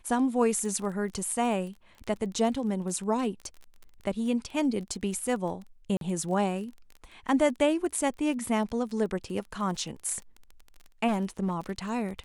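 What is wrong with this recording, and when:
crackle 22 per s -37 dBFS
5.97–6.01 s: dropout 42 ms
11.07–11.72 s: clipped -23 dBFS

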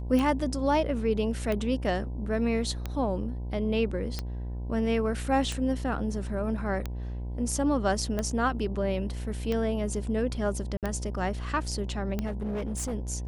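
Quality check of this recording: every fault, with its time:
buzz 60 Hz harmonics 17 -34 dBFS
tick 45 rpm -17 dBFS
10.77–10.83 s: dropout 57 ms
12.26–12.94 s: clipped -28 dBFS

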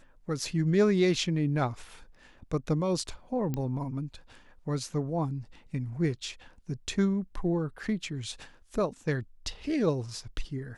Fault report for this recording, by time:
3.54 s: pop -19 dBFS

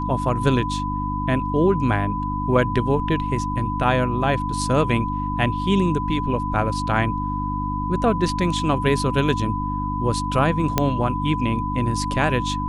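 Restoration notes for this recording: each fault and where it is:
hum 50 Hz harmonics 6 -27 dBFS
whine 1 kHz -26 dBFS
10.78 s: pop -3 dBFS

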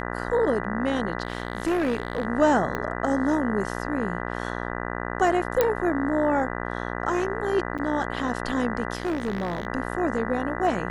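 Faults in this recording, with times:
buzz 60 Hz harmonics 33 -31 dBFS
1.23–2.25 s: clipped -20 dBFS
2.75 s: pop -15 dBFS
5.61 s: pop -7 dBFS
7.78–7.79 s: dropout 7.2 ms
8.95–9.67 s: clipped -22.5 dBFS

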